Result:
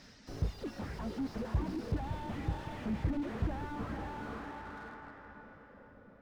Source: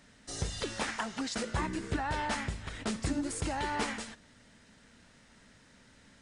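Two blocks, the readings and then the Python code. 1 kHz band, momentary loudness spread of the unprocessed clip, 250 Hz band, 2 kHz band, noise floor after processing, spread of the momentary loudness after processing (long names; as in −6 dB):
−6.5 dB, 6 LU, −1.0 dB, −9.5 dB, −57 dBFS, 17 LU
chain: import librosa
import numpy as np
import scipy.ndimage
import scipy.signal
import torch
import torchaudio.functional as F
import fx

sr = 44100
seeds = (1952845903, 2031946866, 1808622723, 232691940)

p1 = fx.dereverb_blind(x, sr, rt60_s=2.0)
p2 = fx.sample_hold(p1, sr, seeds[0], rate_hz=4400.0, jitter_pct=0)
p3 = p1 + (p2 * 10.0 ** (-5.0 / 20.0))
p4 = fx.filter_sweep_lowpass(p3, sr, from_hz=5200.0, to_hz=540.0, start_s=1.52, end_s=5.45, q=3.5)
p5 = fx.echo_diffused(p4, sr, ms=499, feedback_pct=43, wet_db=-8.5)
y = fx.slew_limit(p5, sr, full_power_hz=6.9)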